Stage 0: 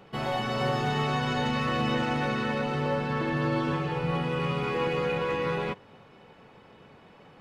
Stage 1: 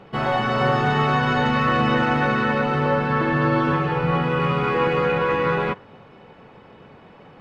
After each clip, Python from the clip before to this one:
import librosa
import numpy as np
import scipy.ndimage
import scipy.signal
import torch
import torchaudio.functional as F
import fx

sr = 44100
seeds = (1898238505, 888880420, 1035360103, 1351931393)

y = fx.lowpass(x, sr, hz=2600.0, slope=6)
y = fx.dynamic_eq(y, sr, hz=1400.0, q=1.5, threshold_db=-46.0, ratio=4.0, max_db=6)
y = F.gain(torch.from_numpy(y), 7.0).numpy()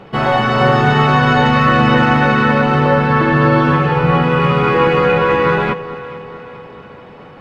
y = fx.echo_alternate(x, sr, ms=217, hz=870.0, feedback_pct=73, wet_db=-14)
y = F.gain(torch.from_numpy(y), 7.5).numpy()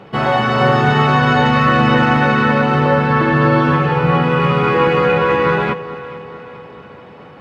y = scipy.signal.sosfilt(scipy.signal.butter(2, 58.0, 'highpass', fs=sr, output='sos'), x)
y = F.gain(torch.from_numpy(y), -1.0).numpy()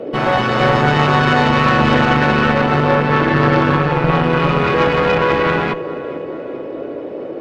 y = fx.cheby_harmonics(x, sr, harmonics=(4,), levels_db=(-13,), full_scale_db=-1.5)
y = fx.dmg_noise_band(y, sr, seeds[0], low_hz=270.0, high_hz=590.0, level_db=-25.0)
y = F.gain(torch.from_numpy(y), -1.5).numpy()